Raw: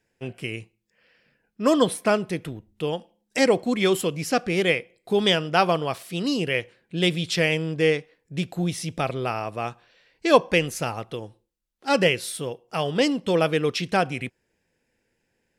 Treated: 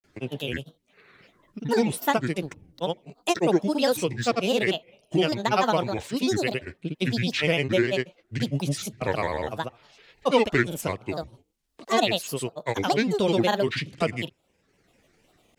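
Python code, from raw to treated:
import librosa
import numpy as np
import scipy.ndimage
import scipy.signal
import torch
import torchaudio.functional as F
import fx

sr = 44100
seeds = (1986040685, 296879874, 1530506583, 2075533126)

y = fx.notch(x, sr, hz=1700.0, q=6.5)
y = fx.granulator(y, sr, seeds[0], grain_ms=100.0, per_s=20.0, spray_ms=100.0, spread_st=7)
y = fx.band_squash(y, sr, depth_pct=40)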